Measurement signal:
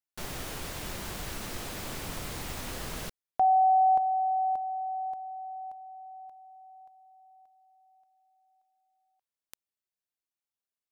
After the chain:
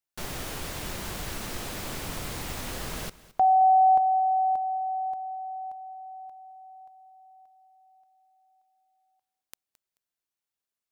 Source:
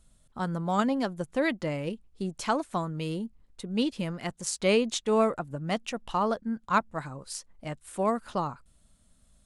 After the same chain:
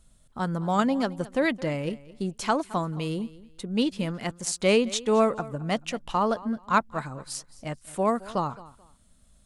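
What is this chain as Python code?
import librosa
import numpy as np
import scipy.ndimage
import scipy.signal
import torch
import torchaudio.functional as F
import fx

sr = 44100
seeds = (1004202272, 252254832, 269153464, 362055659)

y = fx.echo_feedback(x, sr, ms=217, feedback_pct=25, wet_db=-19.0)
y = y * librosa.db_to_amplitude(2.5)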